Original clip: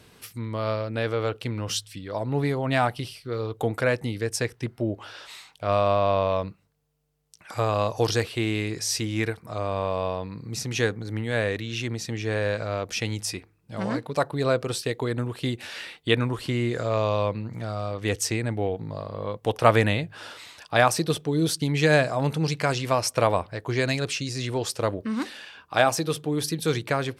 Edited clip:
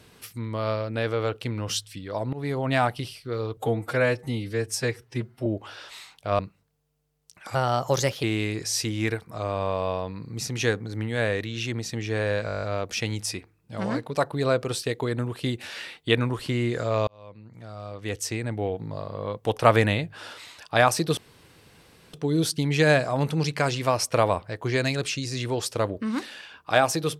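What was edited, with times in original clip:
2.33–2.58 fade in, from -17.5 dB
3.57–4.83 stretch 1.5×
5.76–6.43 cut
7.59–8.39 speed 117%
12.62 stutter 0.02 s, 9 plays
17.07–18.91 fade in
21.17 insert room tone 0.96 s

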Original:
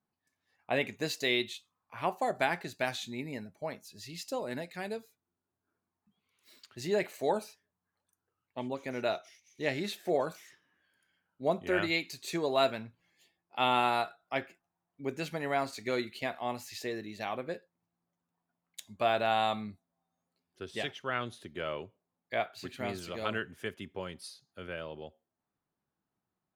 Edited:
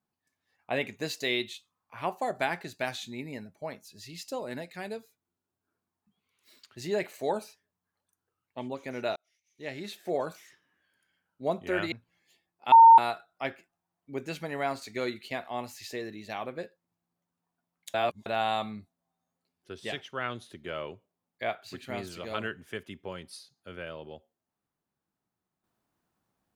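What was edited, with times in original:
9.16–10.26 fade in
11.92–12.83 cut
13.63–13.89 bleep 912 Hz -10 dBFS
18.85–19.17 reverse

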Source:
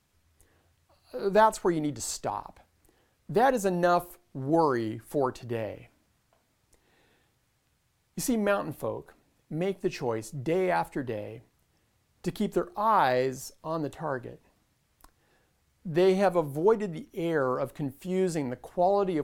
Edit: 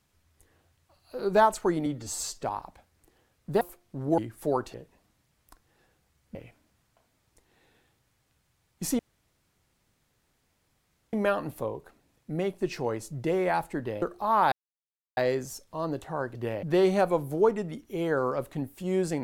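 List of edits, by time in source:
1.86–2.24 stretch 1.5×
3.42–4.02 cut
4.59–4.87 cut
5.43–5.71 swap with 14.26–15.87
8.35 insert room tone 2.14 s
11.24–12.58 cut
13.08 insert silence 0.65 s

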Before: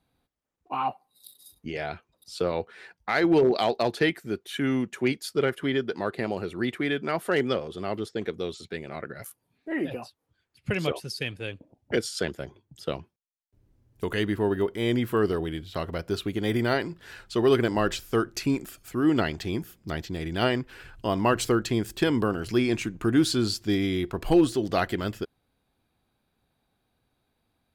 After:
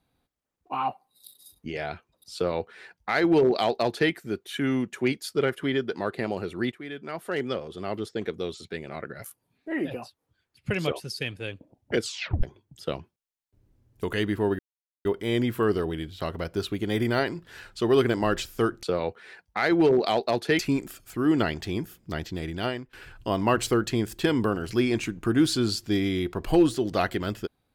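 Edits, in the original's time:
2.35–4.11 copy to 18.37
6.72–8.07 fade in, from -14 dB
12.02 tape stop 0.41 s
14.59 insert silence 0.46 s
20.2–20.71 fade out linear, to -18 dB

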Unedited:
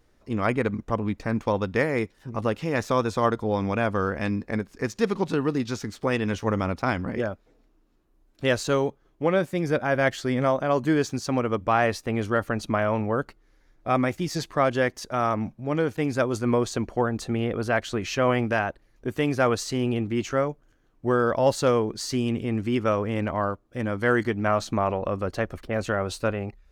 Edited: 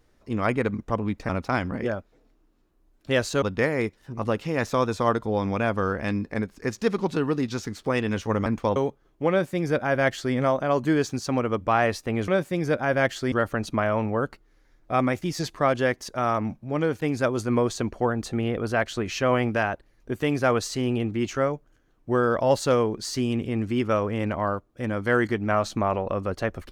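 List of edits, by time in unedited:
1.29–1.59 swap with 6.63–8.76
9.3–10.34 copy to 12.28

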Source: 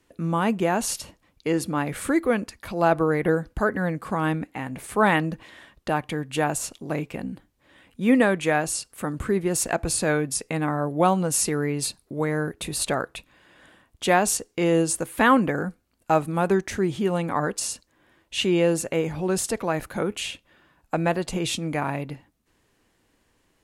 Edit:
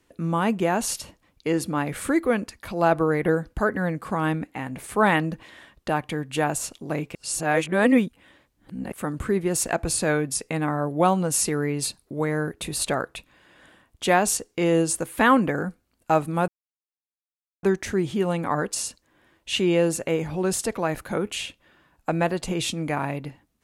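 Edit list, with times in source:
7.15–8.92 reverse
16.48 insert silence 1.15 s

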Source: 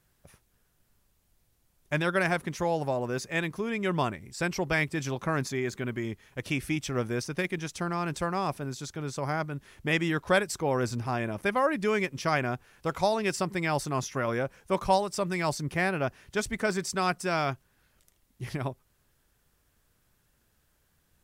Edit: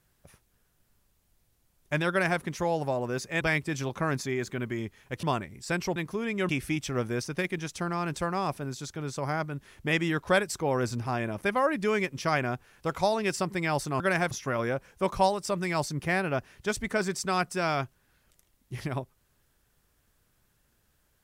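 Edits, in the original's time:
2.1–2.41 copy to 14
3.41–3.94 swap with 4.67–6.49

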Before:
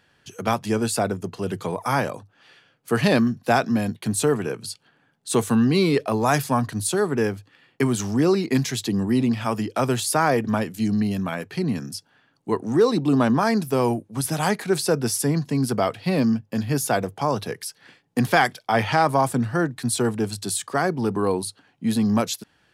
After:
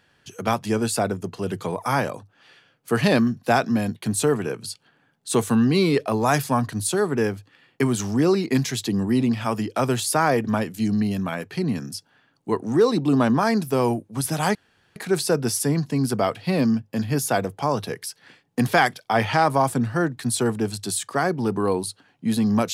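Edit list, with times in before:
14.55 insert room tone 0.41 s

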